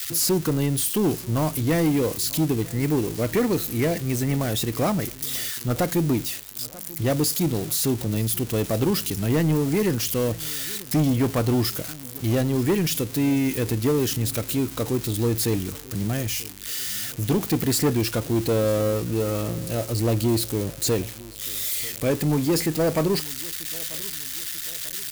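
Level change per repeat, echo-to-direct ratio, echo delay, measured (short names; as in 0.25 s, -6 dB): -7.0 dB, -20.0 dB, 0.94 s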